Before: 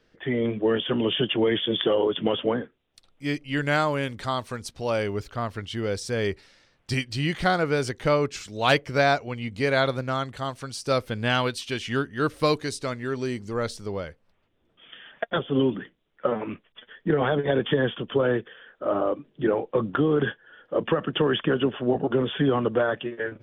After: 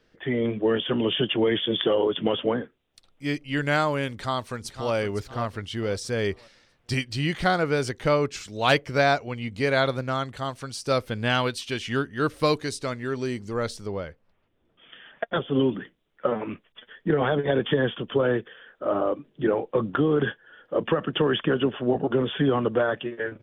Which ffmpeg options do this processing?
ffmpeg -i in.wav -filter_complex "[0:a]asplit=2[link_01][link_02];[link_02]afade=type=in:start_time=4.13:duration=0.01,afade=type=out:start_time=4.94:duration=0.01,aecho=0:1:510|1020|1530|2040:0.298538|0.104488|0.0365709|0.0127998[link_03];[link_01][link_03]amix=inputs=2:normalize=0,asettb=1/sr,asplit=3[link_04][link_05][link_06];[link_04]atrim=end=13.874[link_07];[link_05]atrim=start=13.87:end=15.36,asetpts=PTS-STARTPTS,afade=type=in:duration=0.004:curve=qsin,afade=type=out:start_time=1.486:duration=0.004:curve=qsin,highshelf=frequency=5300:gain=-10.5[link_08];[link_06]atrim=start=15.356[link_09];[link_07][link_08]acrossfade=duration=0.004:curve1=hsin:curve2=qsin[link_10];[link_10][link_09]acrossfade=duration=0.004:curve1=qsin:curve2=hsin" out.wav

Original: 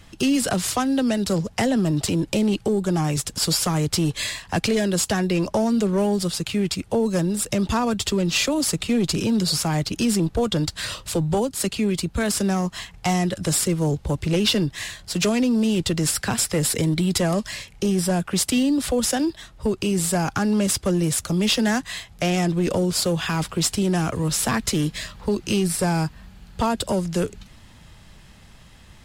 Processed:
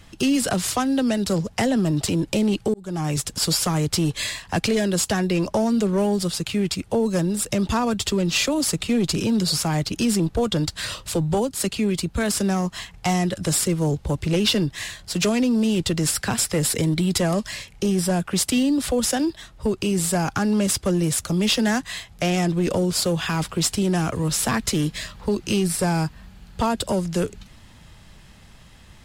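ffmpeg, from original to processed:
ffmpeg -i in.wav -filter_complex "[0:a]asplit=2[link_01][link_02];[link_01]atrim=end=2.74,asetpts=PTS-STARTPTS,afade=type=out:start_time=2.736:duration=0.004:curve=hsin[link_03];[link_02]atrim=start=2.74,asetpts=PTS-STARTPTS,afade=type=in:duration=0.4[link_04];[link_03][link_04]concat=n=2:v=0:a=1" out.wav

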